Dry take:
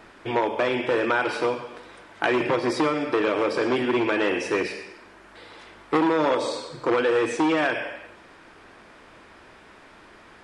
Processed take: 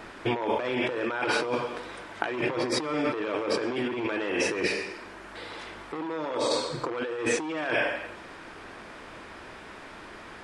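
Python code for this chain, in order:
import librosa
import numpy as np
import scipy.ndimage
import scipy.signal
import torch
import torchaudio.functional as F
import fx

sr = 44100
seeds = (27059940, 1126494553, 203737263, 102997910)

y = fx.over_compress(x, sr, threshold_db=-29.0, ratio=-1.0)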